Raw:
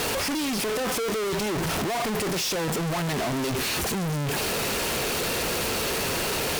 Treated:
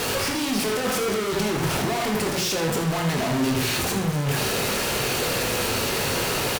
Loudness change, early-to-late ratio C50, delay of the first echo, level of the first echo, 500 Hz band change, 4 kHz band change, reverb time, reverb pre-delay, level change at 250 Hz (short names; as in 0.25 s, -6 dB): +2.5 dB, 5.0 dB, 79 ms, -9.5 dB, +2.5 dB, +2.5 dB, 0.55 s, 17 ms, +3.5 dB